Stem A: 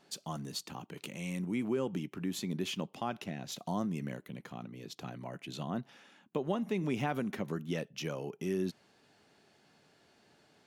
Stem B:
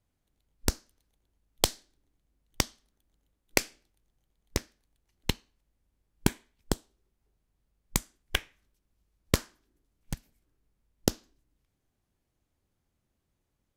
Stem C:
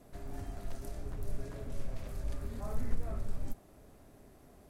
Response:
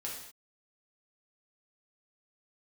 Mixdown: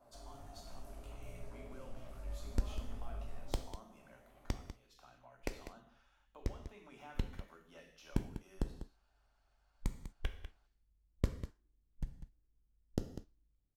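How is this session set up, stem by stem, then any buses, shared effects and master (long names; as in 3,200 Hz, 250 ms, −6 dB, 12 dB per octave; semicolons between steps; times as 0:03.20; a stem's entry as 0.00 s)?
−14.0 dB, 0.00 s, bus A, send −8.5 dB, no echo send, tilt shelving filter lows −6 dB, about 690 Hz
−18.5 dB, 1.90 s, no bus, send −5.5 dB, echo send −9.5 dB, spectral tilt −3 dB per octave
0.0 dB, 0.00 s, bus A, send −7.5 dB, no echo send, parametric band 1,500 Hz −5.5 dB 0.24 octaves; chorus effect 1.5 Hz, delay 16.5 ms, depth 4.8 ms
bus A: 0.0 dB, linear-phase brick-wall band-pass 530–1,600 Hz; downward compressor, threshold −59 dBFS, peak gain reduction 14.5 dB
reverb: on, pre-delay 3 ms
echo: single-tap delay 197 ms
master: no processing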